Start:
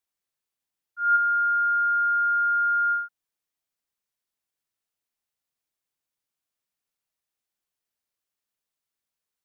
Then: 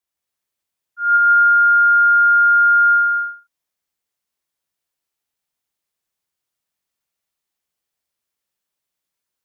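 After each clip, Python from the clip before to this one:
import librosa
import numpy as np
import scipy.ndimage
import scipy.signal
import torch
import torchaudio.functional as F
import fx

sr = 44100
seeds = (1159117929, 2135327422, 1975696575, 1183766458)

y = fx.rev_gated(x, sr, seeds[0], gate_ms=400, shape='flat', drr_db=-3.5)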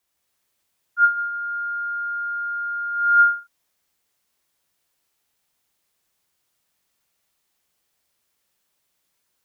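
y = fx.over_compress(x, sr, threshold_db=-20.0, ratio=-0.5)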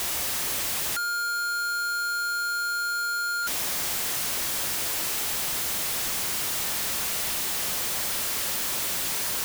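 y = np.sign(x) * np.sqrt(np.mean(np.square(x)))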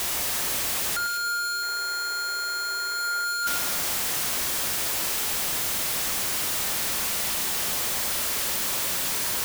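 y = fx.spec_paint(x, sr, seeds[1], shape='noise', start_s=1.62, length_s=1.63, low_hz=340.0, high_hz=2200.0, level_db=-48.0)
y = fx.echo_alternate(y, sr, ms=105, hz=2000.0, feedback_pct=55, wet_db=-7.0)
y = y * librosa.db_to_amplitude(1.0)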